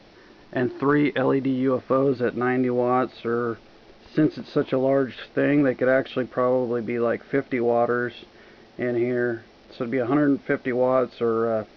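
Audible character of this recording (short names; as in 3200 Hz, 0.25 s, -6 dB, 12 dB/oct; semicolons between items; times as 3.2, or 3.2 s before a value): noise floor -51 dBFS; spectral tilt -3.5 dB/oct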